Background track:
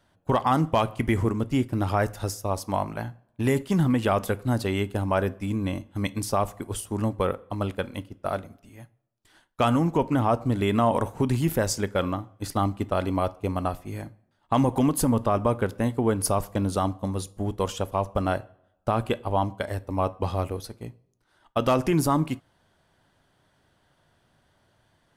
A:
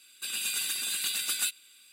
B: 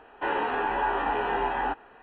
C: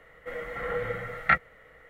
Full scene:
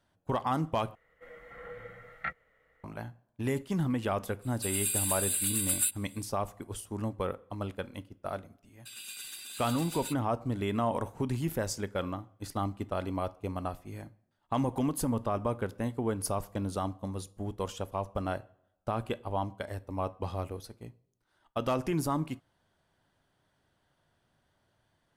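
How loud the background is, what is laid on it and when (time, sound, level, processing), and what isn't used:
background track -8 dB
0.95 s: replace with C -14 dB
4.40 s: add A -7 dB, fades 0.05 s + resonant high shelf 7.2 kHz +7 dB, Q 3
8.63 s: add A -12 dB + expander -44 dBFS
not used: B

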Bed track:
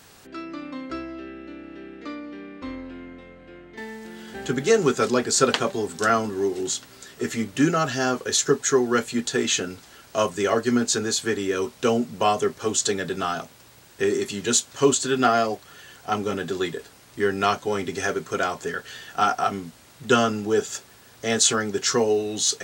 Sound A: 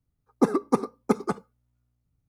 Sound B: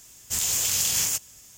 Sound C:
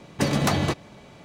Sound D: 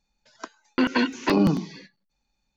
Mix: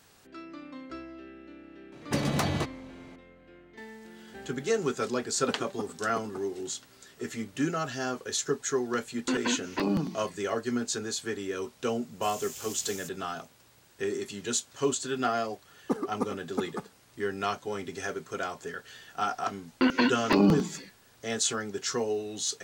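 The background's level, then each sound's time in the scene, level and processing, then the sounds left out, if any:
bed track -9 dB
1.92 s: add C -5.5 dB
5.06 s: add A -16 dB
8.50 s: add D -8 dB
11.91 s: add B -18 dB
15.48 s: add A -8.5 dB
19.03 s: add D -2 dB

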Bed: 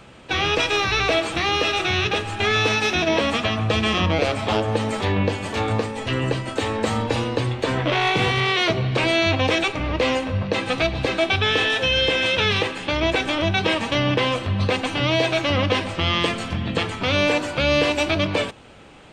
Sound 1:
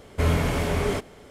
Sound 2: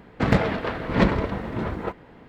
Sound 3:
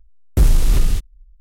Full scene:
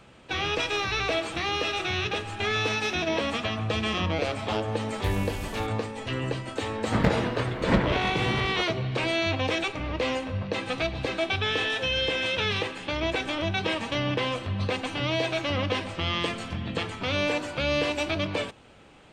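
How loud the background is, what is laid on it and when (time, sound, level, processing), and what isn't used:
bed -7 dB
4.67 s: add 3 -15 dB + high-pass 60 Hz
6.72 s: add 2 -3.5 dB
not used: 1

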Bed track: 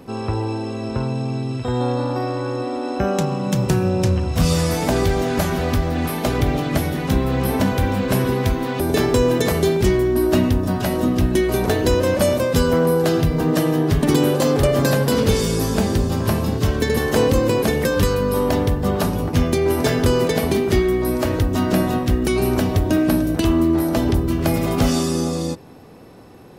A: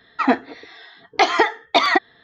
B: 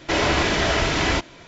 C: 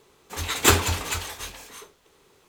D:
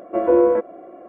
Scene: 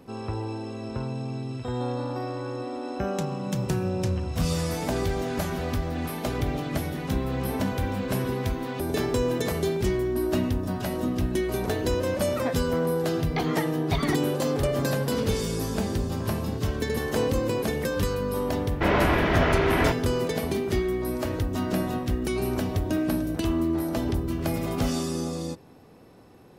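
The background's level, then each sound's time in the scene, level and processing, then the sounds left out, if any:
bed track -8.5 dB
12.17 s: add A -15.5 dB
18.72 s: add B -1 dB + low-pass 2 kHz
not used: C, D

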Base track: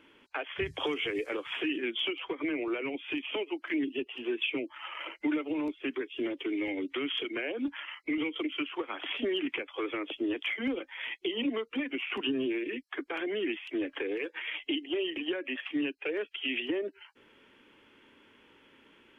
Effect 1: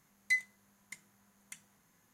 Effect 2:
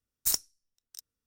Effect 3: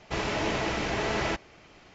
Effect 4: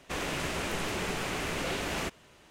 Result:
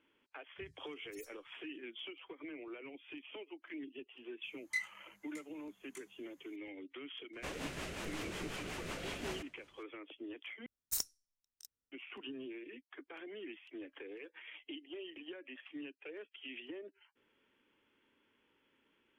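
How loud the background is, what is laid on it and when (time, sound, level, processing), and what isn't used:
base track -15 dB
0.88 s: add 2 -11 dB + harmonic-percussive separation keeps harmonic
4.43 s: add 1 -1.5 dB + detune thickener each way 47 cents
7.33 s: add 4 -8 dB + rotary cabinet horn 5.5 Hz
10.66 s: replace with 2 -9 dB
not used: 3

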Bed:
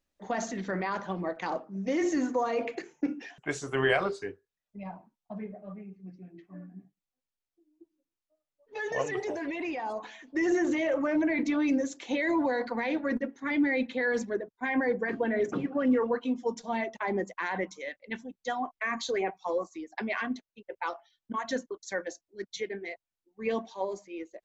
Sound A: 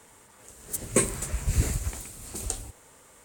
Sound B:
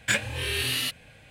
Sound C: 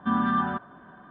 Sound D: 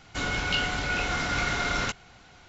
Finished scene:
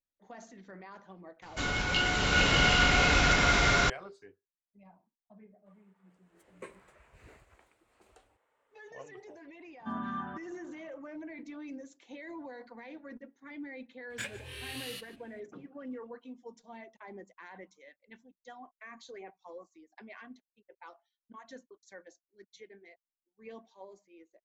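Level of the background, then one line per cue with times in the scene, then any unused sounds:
bed -17 dB
1.42 s: add D -2.5 dB + swelling reverb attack 780 ms, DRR -6 dB
5.66 s: add A -17 dB + three-band isolator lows -18 dB, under 380 Hz, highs -24 dB, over 3 kHz
9.80 s: add C -12.5 dB
14.10 s: add B -14.5 dB + echo from a far wall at 26 m, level -16 dB

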